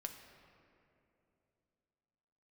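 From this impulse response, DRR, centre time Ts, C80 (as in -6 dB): 4.0 dB, 41 ms, 8.0 dB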